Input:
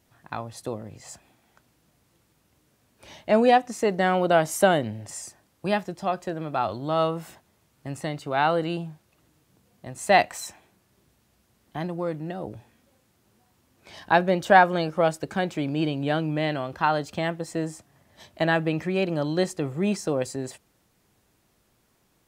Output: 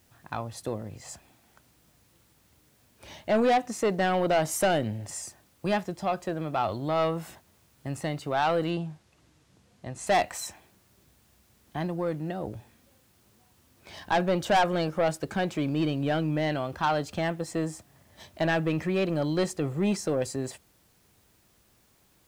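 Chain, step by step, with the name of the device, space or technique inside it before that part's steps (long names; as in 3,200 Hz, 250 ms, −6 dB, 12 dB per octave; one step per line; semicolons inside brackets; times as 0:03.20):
open-reel tape (soft clipping −18 dBFS, distortion −9 dB; parametric band 71 Hz +4.5 dB 1.09 octaves; white noise bed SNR 38 dB)
0:08.70–0:10.07: low-pass filter 7,700 Hz 12 dB per octave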